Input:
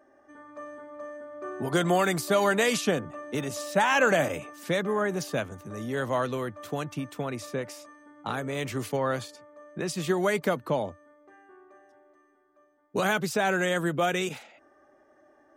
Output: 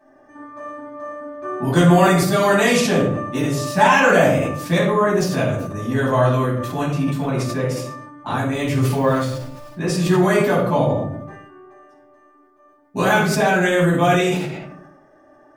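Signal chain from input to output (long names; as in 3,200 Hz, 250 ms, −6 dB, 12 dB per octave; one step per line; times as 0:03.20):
0:08.91–0:09.73: hold until the input has moved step −47.5 dBFS
rectangular room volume 770 cubic metres, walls furnished, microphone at 8.9 metres
level that may fall only so fast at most 47 dB per second
level −2.5 dB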